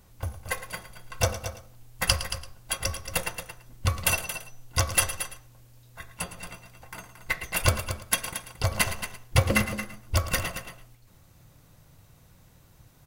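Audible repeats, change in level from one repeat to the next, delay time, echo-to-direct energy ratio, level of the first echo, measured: 3, repeats not evenly spaced, 111 ms, −8.5 dB, −13.0 dB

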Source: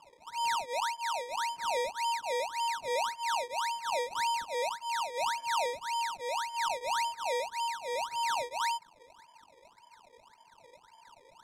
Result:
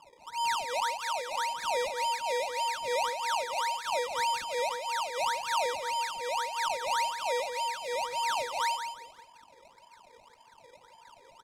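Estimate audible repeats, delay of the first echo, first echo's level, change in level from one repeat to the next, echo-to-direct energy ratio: 3, 171 ms, −8.0 dB, −10.5 dB, −7.5 dB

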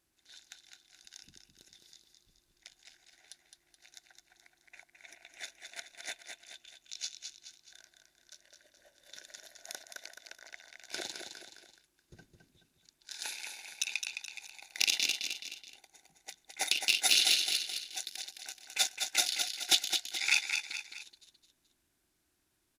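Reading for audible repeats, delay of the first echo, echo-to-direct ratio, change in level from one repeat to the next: 3, 213 ms, −5.0 dB, −7.0 dB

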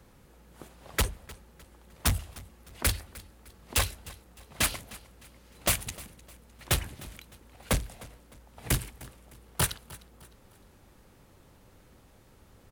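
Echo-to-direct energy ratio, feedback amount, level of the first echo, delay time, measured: −19.5 dB, 38%, −20.0 dB, 305 ms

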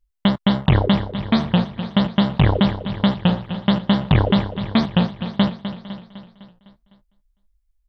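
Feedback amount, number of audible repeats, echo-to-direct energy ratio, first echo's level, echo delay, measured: repeats not evenly spaced, 7, −9.0 dB, −11.0 dB, 253 ms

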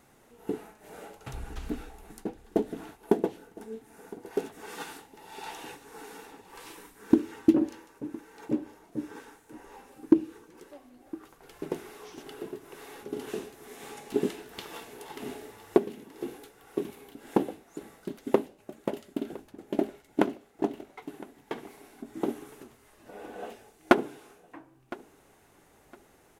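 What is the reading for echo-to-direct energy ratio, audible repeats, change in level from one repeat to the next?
−20.0 dB, 2, −13.0 dB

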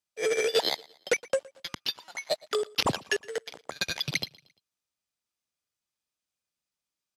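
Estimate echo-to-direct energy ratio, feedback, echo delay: −22.0 dB, 42%, 115 ms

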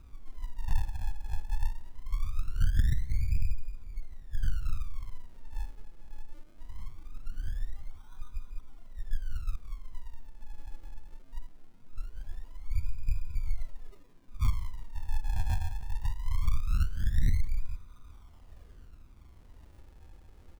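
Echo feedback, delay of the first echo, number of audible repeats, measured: 50%, 182 ms, 3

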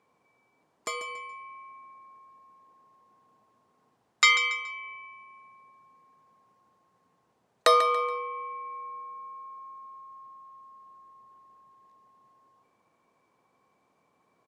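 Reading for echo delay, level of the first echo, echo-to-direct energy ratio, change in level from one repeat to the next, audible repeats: 141 ms, −12.0 dB, −11.5 dB, −10.0 dB, 3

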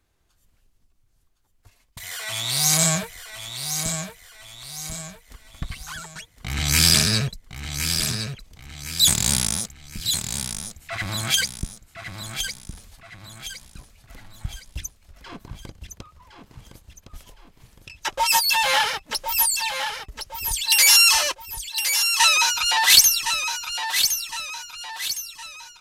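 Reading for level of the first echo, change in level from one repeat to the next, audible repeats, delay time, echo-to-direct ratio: −7.5 dB, −7.5 dB, 4, 1,062 ms, −6.5 dB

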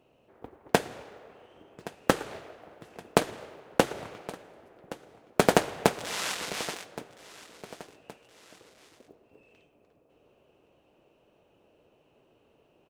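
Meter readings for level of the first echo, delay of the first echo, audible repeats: −18.0 dB, 1,120 ms, 2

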